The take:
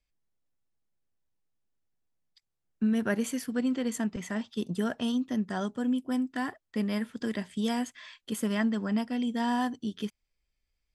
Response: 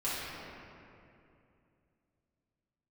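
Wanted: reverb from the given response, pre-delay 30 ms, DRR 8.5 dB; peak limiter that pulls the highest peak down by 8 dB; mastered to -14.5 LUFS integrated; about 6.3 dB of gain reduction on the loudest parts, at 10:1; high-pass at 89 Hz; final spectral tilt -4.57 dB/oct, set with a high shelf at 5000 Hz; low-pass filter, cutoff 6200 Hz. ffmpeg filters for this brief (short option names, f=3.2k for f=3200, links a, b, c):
-filter_complex "[0:a]highpass=89,lowpass=6.2k,highshelf=f=5k:g=8.5,acompressor=threshold=-30dB:ratio=10,alimiter=level_in=6dB:limit=-24dB:level=0:latency=1,volume=-6dB,asplit=2[a][b];[1:a]atrim=start_sample=2205,adelay=30[c];[b][c]afir=irnorm=-1:irlink=0,volume=-16dB[d];[a][d]amix=inputs=2:normalize=0,volume=23.5dB"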